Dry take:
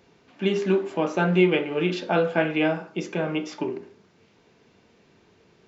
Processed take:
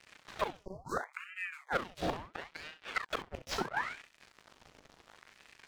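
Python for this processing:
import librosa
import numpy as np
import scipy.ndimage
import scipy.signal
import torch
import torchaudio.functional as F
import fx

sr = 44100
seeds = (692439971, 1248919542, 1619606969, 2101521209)

p1 = fx.gate_flip(x, sr, shuts_db=-19.0, range_db=-32)
p2 = fx.leveller(p1, sr, passes=5)
p3 = fx.spec_erase(p2, sr, start_s=0.6, length_s=1.12, low_hz=940.0, high_hz=4500.0)
p4 = p3 + fx.room_early_taps(p3, sr, ms=(38, 66), db=(-9.5, -12.0), dry=0)
p5 = fx.ring_lfo(p4, sr, carrier_hz=1200.0, swing_pct=85, hz=0.73)
y = F.gain(torch.from_numpy(p5), -7.0).numpy()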